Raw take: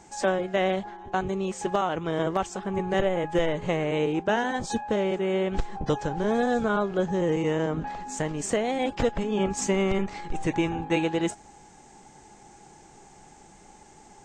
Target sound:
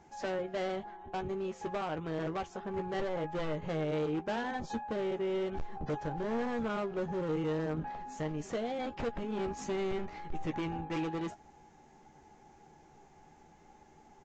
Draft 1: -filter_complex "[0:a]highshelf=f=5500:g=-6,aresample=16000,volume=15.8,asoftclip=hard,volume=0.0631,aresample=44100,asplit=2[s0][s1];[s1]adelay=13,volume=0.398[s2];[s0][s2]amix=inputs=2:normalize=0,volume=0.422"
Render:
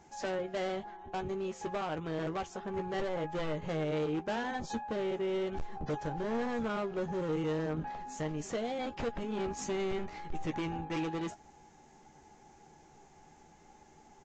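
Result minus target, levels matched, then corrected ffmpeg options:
8 kHz band +5.0 dB
-filter_complex "[0:a]highshelf=f=5500:g=-15.5,aresample=16000,volume=15.8,asoftclip=hard,volume=0.0631,aresample=44100,asplit=2[s0][s1];[s1]adelay=13,volume=0.398[s2];[s0][s2]amix=inputs=2:normalize=0,volume=0.422"

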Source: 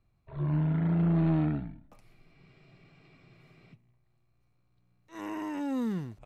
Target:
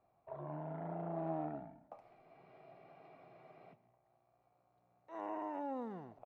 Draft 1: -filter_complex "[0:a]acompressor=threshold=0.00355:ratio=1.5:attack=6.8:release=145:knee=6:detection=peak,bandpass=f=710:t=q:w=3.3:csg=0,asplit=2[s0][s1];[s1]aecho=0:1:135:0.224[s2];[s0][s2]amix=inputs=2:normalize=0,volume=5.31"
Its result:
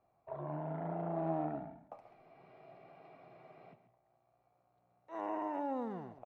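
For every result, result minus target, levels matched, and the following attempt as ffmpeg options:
echo-to-direct +6.5 dB; compression: peak gain reduction -3.5 dB
-filter_complex "[0:a]acompressor=threshold=0.00355:ratio=1.5:attack=6.8:release=145:knee=6:detection=peak,bandpass=f=710:t=q:w=3.3:csg=0,asplit=2[s0][s1];[s1]aecho=0:1:135:0.106[s2];[s0][s2]amix=inputs=2:normalize=0,volume=5.31"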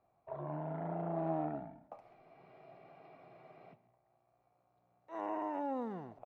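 compression: peak gain reduction -3.5 dB
-filter_complex "[0:a]acompressor=threshold=0.001:ratio=1.5:attack=6.8:release=145:knee=6:detection=peak,bandpass=f=710:t=q:w=3.3:csg=0,asplit=2[s0][s1];[s1]aecho=0:1:135:0.106[s2];[s0][s2]amix=inputs=2:normalize=0,volume=5.31"

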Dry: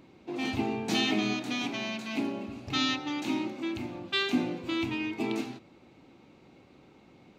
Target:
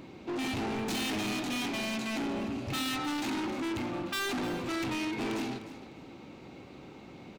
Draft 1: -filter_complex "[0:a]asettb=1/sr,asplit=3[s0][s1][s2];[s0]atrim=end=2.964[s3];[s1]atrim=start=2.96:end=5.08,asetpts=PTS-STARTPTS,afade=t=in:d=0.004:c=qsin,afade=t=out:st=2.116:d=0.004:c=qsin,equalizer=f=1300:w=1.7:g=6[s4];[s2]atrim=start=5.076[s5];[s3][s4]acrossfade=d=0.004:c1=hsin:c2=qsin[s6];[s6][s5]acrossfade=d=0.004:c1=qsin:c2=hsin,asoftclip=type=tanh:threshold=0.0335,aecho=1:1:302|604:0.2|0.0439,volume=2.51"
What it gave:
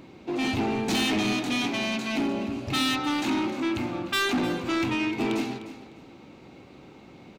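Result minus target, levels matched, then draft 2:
saturation: distortion -6 dB
-filter_complex "[0:a]asettb=1/sr,asplit=3[s0][s1][s2];[s0]atrim=end=2.964[s3];[s1]atrim=start=2.96:end=5.08,asetpts=PTS-STARTPTS,afade=t=in:d=0.004:c=qsin,afade=t=out:st=2.116:d=0.004:c=qsin,equalizer=f=1300:w=1.7:g=6[s4];[s2]atrim=start=5.076[s5];[s3][s4]acrossfade=d=0.004:c1=hsin:c2=qsin[s6];[s6][s5]acrossfade=d=0.004:c1=qsin:c2=hsin,asoftclip=type=tanh:threshold=0.0106,aecho=1:1:302|604:0.2|0.0439,volume=2.51"

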